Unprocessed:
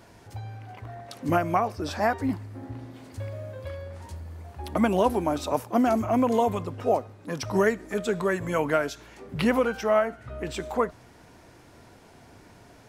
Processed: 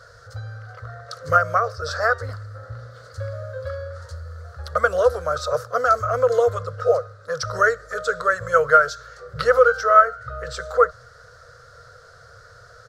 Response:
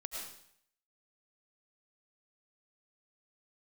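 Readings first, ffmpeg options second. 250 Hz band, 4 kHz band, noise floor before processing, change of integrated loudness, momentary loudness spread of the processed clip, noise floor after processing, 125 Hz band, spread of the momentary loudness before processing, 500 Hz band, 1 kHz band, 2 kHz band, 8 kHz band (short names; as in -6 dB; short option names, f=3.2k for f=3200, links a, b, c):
-19.0 dB, +3.5 dB, -53 dBFS, +6.0 dB, 21 LU, -48 dBFS, +2.0 dB, 17 LU, +5.5 dB, +7.5 dB, +10.5 dB, +3.5 dB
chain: -af "firequalizer=gain_entry='entry(130,0);entry(210,-29);entry(340,-28);entry(480,8);entry(880,-17);entry(1300,15);entry(2400,-16);entry(4300,5);entry(11000,-10)':delay=0.05:min_phase=1,volume=4dB"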